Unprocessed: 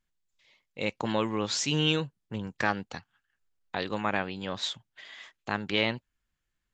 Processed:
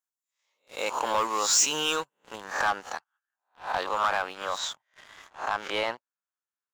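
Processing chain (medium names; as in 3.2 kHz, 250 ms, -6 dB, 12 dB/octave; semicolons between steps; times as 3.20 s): reverse spectral sustain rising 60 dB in 0.41 s; high-pass 890 Hz 12 dB/octave; high-order bell 2.9 kHz -11.5 dB; waveshaping leveller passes 3; treble shelf 6.2 kHz +4 dB, from 2.44 s -5.5 dB, from 4.58 s -11 dB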